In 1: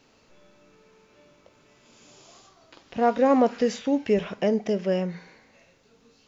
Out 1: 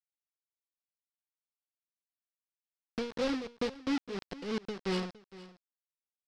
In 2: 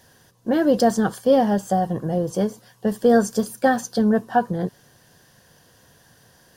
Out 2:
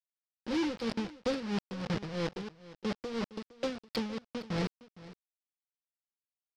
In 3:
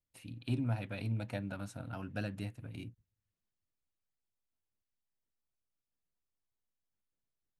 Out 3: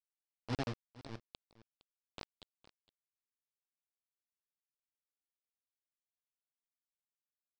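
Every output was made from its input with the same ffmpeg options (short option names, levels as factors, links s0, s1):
-af "afftfilt=real='re*(1-between(b*sr/4096,540,2800))':imag='im*(1-between(b*sr/4096,540,2800))':win_size=4096:overlap=0.75,acompressor=threshold=0.0631:ratio=3,aresample=11025,acrusher=bits=4:mix=0:aa=0.000001,aresample=44100,asoftclip=type=tanh:threshold=0.0531,tremolo=f=3:d=0.74,aecho=1:1:462:0.126"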